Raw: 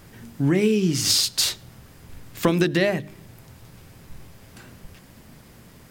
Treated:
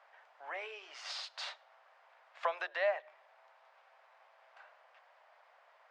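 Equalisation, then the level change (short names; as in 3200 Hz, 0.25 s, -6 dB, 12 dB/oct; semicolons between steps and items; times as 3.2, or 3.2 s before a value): steep high-pass 620 Hz 48 dB/oct; tape spacing loss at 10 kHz 34 dB; high shelf 3400 Hz -8.5 dB; -1.5 dB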